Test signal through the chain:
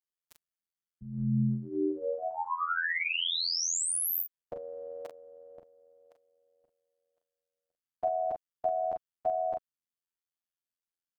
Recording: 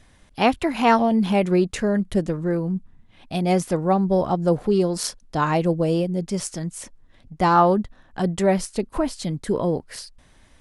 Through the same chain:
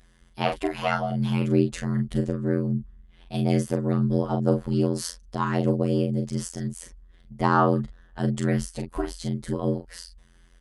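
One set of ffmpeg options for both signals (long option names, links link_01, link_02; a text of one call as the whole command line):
ffmpeg -i in.wav -filter_complex "[0:a]afftfilt=real='hypot(re,im)*cos(PI*b)':imag='0':win_size=1024:overlap=0.75,asplit=2[link_01][link_02];[link_02]adelay=40,volume=-6dB[link_03];[link_01][link_03]amix=inputs=2:normalize=0,aeval=exprs='val(0)*sin(2*PI*42*n/s)':channel_layout=same" out.wav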